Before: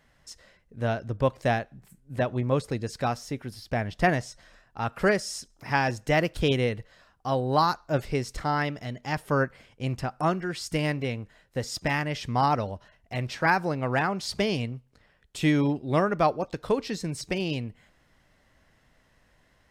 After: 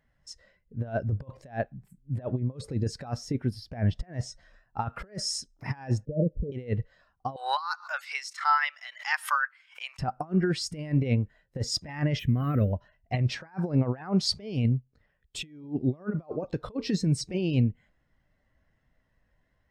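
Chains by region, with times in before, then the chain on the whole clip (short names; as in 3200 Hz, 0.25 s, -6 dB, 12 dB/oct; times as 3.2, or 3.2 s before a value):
6.05–6.52 rippled Chebyshev low-pass 620 Hz, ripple 9 dB + comb 3.7 ms, depth 38%
7.36–9.99 HPF 1100 Hz 24 dB/oct + backwards sustainer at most 110 dB/s
12.19–12.73 fixed phaser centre 2100 Hz, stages 4 + careless resampling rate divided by 3×, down none, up hold
whole clip: negative-ratio compressor -31 dBFS, ratio -0.5; spectral expander 1.5:1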